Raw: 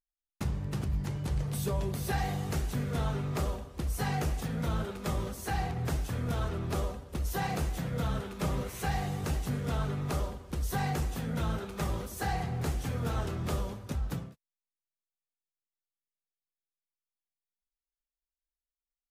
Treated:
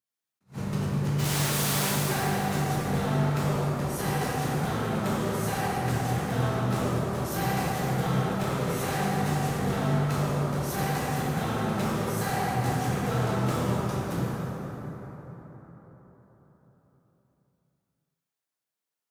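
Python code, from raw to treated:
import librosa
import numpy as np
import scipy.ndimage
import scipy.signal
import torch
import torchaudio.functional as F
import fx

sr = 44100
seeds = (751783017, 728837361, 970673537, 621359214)

y = fx.spec_flatten(x, sr, power=0.33, at=(1.18, 1.91), fade=0.02)
y = scipy.signal.sosfilt(scipy.signal.butter(4, 110.0, 'highpass', fs=sr, output='sos'), y)
y = np.clip(10.0 ** (32.5 / 20.0) * y, -1.0, 1.0) / 10.0 ** (32.5 / 20.0)
y = fx.rev_plate(y, sr, seeds[0], rt60_s=4.7, hf_ratio=0.45, predelay_ms=0, drr_db=-7.0)
y = fx.attack_slew(y, sr, db_per_s=300.0)
y = F.gain(torch.from_numpy(y), 1.5).numpy()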